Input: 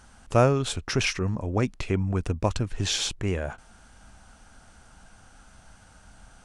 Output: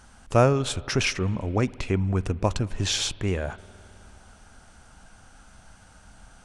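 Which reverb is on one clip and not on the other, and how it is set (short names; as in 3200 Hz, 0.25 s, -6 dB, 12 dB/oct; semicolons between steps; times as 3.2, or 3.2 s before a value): spring tank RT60 2.9 s, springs 52 ms, chirp 30 ms, DRR 20 dB; gain +1 dB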